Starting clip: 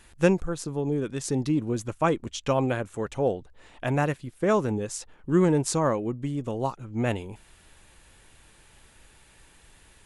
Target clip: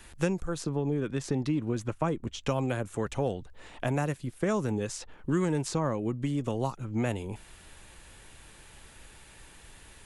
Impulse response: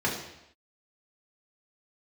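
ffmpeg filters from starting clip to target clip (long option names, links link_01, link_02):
-filter_complex "[0:a]asettb=1/sr,asplit=3[link_01][link_02][link_03];[link_01]atrim=end=0.694[link_04];[link_02]atrim=start=0.69:end=2.4,asetpts=PTS-STARTPTS,afade=type=in:duration=0.004:curve=qsin,afade=type=out:start_time=1.706:duration=0.004:curve=qsin,highshelf=frequency=3700:gain=-11[link_05];[link_03]atrim=start=2.396[link_06];[link_04][link_05]acrossfade=duration=0.004:curve1=hsin:curve2=qsin[link_07];[link_07][link_06]acrossfade=duration=0.004:curve1=qsin:curve2=hsin,acrossover=split=230|1100|5400[link_08][link_09][link_10][link_11];[link_08]acompressor=threshold=-35dB:ratio=4[link_12];[link_09]acompressor=threshold=-35dB:ratio=4[link_13];[link_10]acompressor=threshold=-43dB:ratio=4[link_14];[link_11]acompressor=threshold=-49dB:ratio=4[link_15];[link_12][link_13][link_14][link_15]amix=inputs=4:normalize=0,volume=3.5dB"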